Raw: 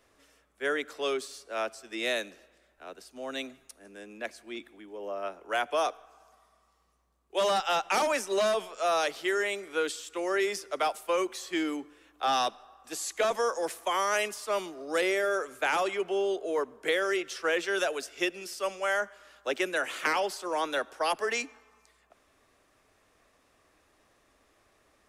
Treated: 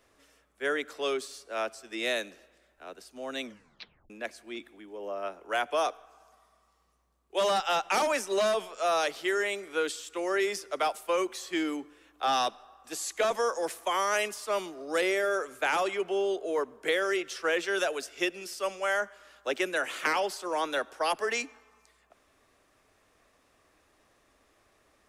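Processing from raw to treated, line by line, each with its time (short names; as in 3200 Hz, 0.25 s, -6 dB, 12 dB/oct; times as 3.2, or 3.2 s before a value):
3.42 tape stop 0.68 s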